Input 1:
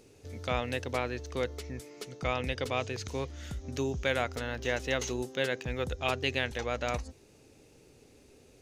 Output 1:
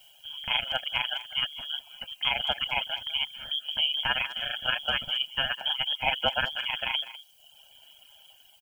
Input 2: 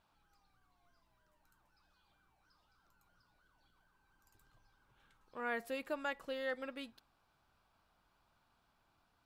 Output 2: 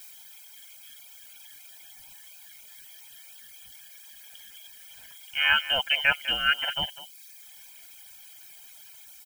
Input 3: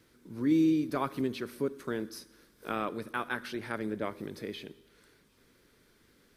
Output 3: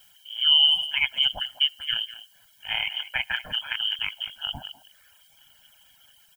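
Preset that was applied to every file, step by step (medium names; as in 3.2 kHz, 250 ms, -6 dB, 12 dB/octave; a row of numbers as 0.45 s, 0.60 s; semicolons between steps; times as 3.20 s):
level rider gain up to 3.5 dB; frequency inversion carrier 3.3 kHz; ring modulator 74 Hz; added noise blue -64 dBFS; comb 1.3 ms, depth 99%; reverb removal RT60 0.96 s; speakerphone echo 200 ms, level -14 dB; peak normalisation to -9 dBFS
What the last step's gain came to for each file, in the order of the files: +1.5 dB, +14.5 dB, +3.5 dB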